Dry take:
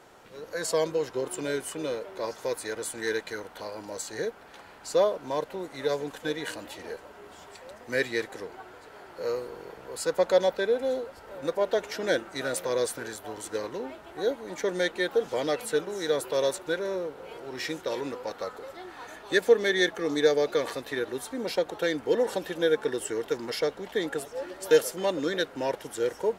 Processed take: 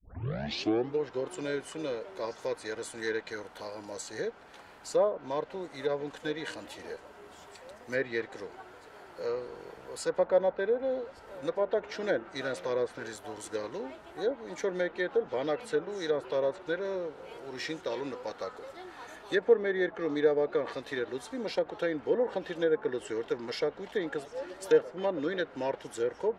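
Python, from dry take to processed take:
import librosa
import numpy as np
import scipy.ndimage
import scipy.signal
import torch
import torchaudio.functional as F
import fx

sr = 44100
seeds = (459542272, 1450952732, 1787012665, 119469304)

y = fx.tape_start_head(x, sr, length_s=1.04)
y = fx.env_lowpass_down(y, sr, base_hz=1500.0, full_db=-21.5)
y = F.gain(torch.from_numpy(y), -3.0).numpy()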